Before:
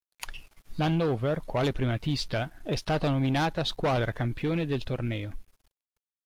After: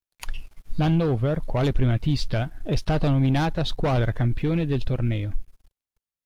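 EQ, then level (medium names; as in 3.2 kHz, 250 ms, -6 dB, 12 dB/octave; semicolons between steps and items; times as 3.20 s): bass shelf 90 Hz +9 dB; bass shelf 360 Hz +5 dB; 0.0 dB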